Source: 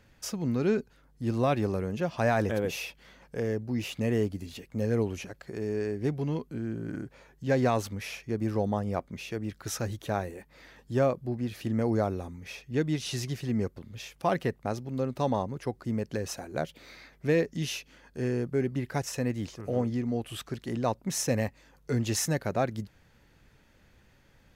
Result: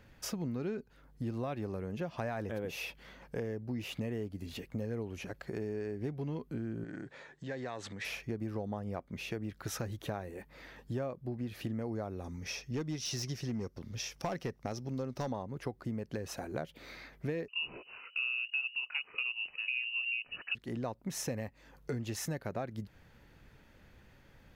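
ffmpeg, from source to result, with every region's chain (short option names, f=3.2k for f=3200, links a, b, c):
-filter_complex "[0:a]asettb=1/sr,asplit=3[a][b][c];[a]atrim=end=6.844[d];[b]atrim=start=6.84:end=8.05,asetpts=PTS-STARTPTS,afade=t=in:d=0.004:c=qsin,afade=t=out:st=1.206:d=0.004:c=qsin,acompressor=threshold=-38dB:ratio=4:attack=3.2:release=140:knee=1:detection=peak,highpass=150,equalizer=f=230:t=q:w=4:g=-5,equalizer=f=1.8k:t=q:w=4:g=8,equalizer=f=3.7k:t=q:w=4:g=7,equalizer=f=7.6k:t=q:w=4:g=6,lowpass=f=8.4k:w=0.5412,lowpass=f=8.4k:w=1.3066[e];[c]atrim=start=8.046[f];[d][e]acrossfade=d=0.004:c1=hsin:c2=qsin[g];[g][f]acrossfade=d=0.004:c1=qsin:c2=hsin,asettb=1/sr,asplit=3[h][i][j];[h]atrim=end=12.244[k];[i]atrim=start=12.24:end=15.32,asetpts=PTS-STARTPTS,afade=t=in:d=0.004:c=qsin,afade=t=out:st=3.076:d=0.004:c=qsin,equalizer=f=5.6k:w=3.2:g=15,volume=22dB,asoftclip=hard,volume=-22dB[l];[j]atrim=start=15.316[m];[k][l]acrossfade=d=0.004:c1=hsin:c2=qsin[n];[n][m]acrossfade=d=0.004:c1=qsin:c2=hsin,asettb=1/sr,asplit=3[o][p][q];[o]atrim=end=17.484[r];[p]atrim=start=17.48:end=20.55,asetpts=PTS-STARTPTS,afade=t=in:d=0.004:c=qsin,afade=t=out:st=3.066:d=0.004:c=qsin,equalizer=f=370:t=o:w=1.7:g=13.5,lowpass=f=2.6k:t=q:w=0.5098,lowpass=f=2.6k:t=q:w=0.6013,lowpass=f=2.6k:t=q:w=0.9,lowpass=f=2.6k:t=q:w=2.563,afreqshift=-3000[s];[q]atrim=start=20.546[t];[r][s]acrossfade=d=0.004:c1=hsin:c2=qsin[u];[u][t]acrossfade=d=0.004:c1=qsin:c2=hsin,equalizer=f=7.5k:t=o:w=1.6:g=-5.5,acompressor=threshold=-36dB:ratio=6,volume=1.5dB"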